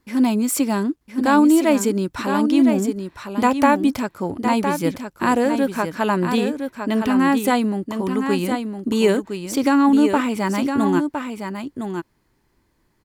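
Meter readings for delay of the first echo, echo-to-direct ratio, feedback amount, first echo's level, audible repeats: 1,011 ms, −7.0 dB, repeats not evenly spaced, −7.0 dB, 1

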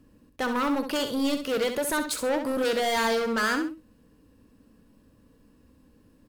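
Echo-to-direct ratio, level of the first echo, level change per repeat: −7.5 dB, −8.0 dB, −10.5 dB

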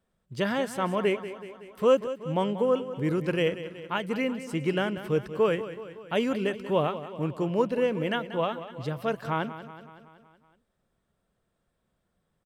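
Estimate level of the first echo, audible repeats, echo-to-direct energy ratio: −13.0 dB, 5, −11.0 dB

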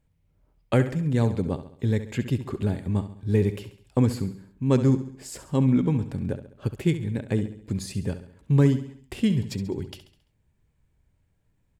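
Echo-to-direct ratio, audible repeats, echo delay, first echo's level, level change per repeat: −11.0 dB, 4, 68 ms, −12.0 dB, −6.5 dB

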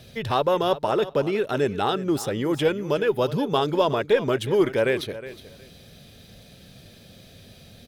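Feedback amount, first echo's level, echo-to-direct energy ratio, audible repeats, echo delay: 18%, −15.0 dB, −15.0 dB, 2, 364 ms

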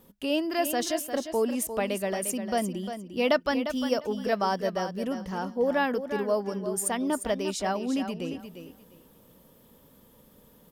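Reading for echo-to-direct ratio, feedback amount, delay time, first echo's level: −9.5 dB, 19%, 351 ms, −9.5 dB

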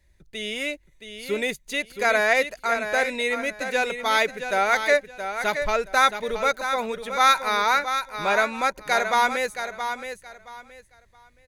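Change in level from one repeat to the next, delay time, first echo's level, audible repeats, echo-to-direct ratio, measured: −13.0 dB, 672 ms, −8.5 dB, 3, −8.5 dB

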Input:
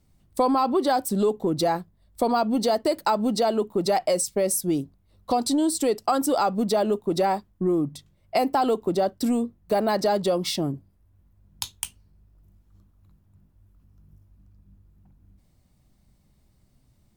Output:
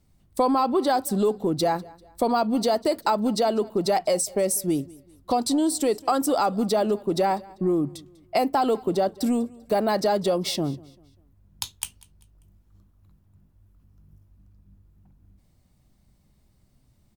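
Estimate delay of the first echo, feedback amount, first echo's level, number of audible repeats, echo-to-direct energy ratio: 196 ms, 38%, −23.0 dB, 2, −22.5 dB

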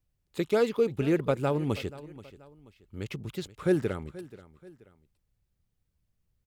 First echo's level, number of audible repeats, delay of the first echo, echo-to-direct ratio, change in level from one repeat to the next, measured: −18.0 dB, 2, 481 ms, −17.5 dB, −8.0 dB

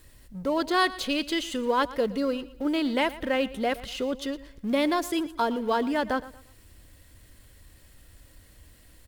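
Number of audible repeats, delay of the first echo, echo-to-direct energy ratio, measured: 2, 116 ms, −17.0 dB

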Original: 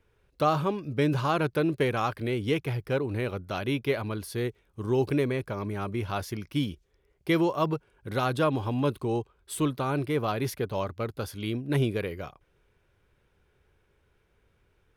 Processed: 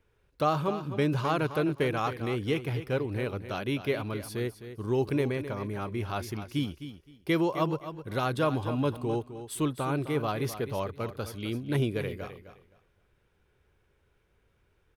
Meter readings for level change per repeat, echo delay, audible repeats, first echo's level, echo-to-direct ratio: −13.5 dB, 259 ms, 2, −11.5 dB, −11.5 dB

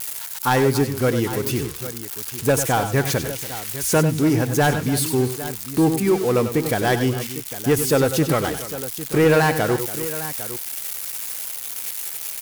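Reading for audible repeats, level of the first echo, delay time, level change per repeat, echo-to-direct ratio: 3, −10.5 dB, 95 ms, repeats not evenly spaced, −7.0 dB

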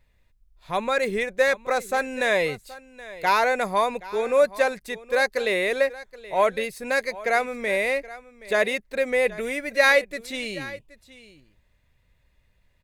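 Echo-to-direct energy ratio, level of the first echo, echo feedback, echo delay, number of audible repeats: −18.0 dB, −18.0 dB, repeats not evenly spaced, 774 ms, 1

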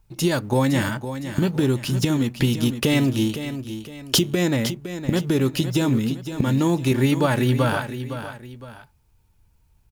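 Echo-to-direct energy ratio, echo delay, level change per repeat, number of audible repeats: −10.0 dB, 511 ms, −8.5 dB, 2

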